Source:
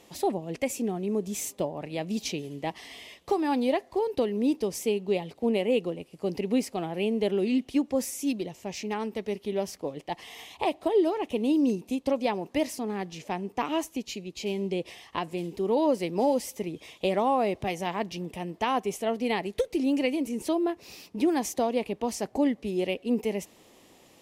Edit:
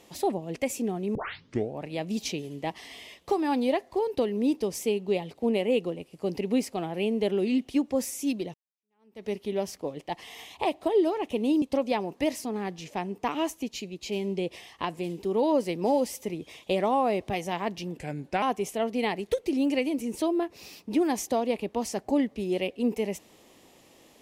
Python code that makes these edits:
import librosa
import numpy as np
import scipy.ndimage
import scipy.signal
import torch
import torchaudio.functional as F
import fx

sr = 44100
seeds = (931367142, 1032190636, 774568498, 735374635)

y = fx.edit(x, sr, fx.tape_start(start_s=1.15, length_s=0.65),
    fx.fade_in_span(start_s=8.54, length_s=0.72, curve='exp'),
    fx.cut(start_s=11.62, length_s=0.34),
    fx.speed_span(start_s=18.31, length_s=0.38, speed=0.84), tone=tone)